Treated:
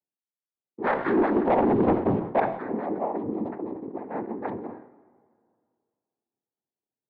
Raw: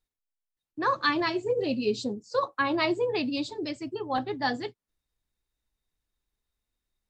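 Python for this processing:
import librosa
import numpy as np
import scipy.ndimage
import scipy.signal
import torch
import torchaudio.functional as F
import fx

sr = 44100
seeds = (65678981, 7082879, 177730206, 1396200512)

y = scipy.signal.sosfilt(scipy.signal.cheby1(2, 1.0, [210.0, 710.0], 'bandpass', fs=sr, output='sos'), x)
y = fx.noise_vocoder(y, sr, seeds[0], bands=6)
y = fx.leveller(y, sr, passes=3, at=(0.84, 2.4))
y = fx.air_absorb(y, sr, metres=440.0)
y = fx.rev_plate(y, sr, seeds[1], rt60_s=2.1, hf_ratio=0.7, predelay_ms=0, drr_db=15.0)
y = fx.sustainer(y, sr, db_per_s=88.0)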